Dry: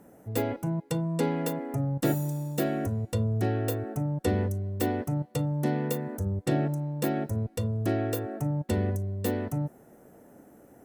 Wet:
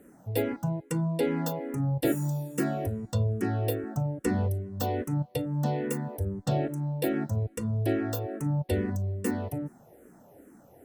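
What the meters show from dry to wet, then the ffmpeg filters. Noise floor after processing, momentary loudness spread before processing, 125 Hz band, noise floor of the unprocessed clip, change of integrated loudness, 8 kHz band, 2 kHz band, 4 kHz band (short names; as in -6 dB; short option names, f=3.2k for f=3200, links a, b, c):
-56 dBFS, 4 LU, -0.5 dB, -56 dBFS, -0.5 dB, -0.5 dB, 0.0 dB, -0.5 dB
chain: -filter_complex "[0:a]asplit=2[a][b];[b]afreqshift=-2.4[c];[a][c]amix=inputs=2:normalize=1,volume=2.5dB"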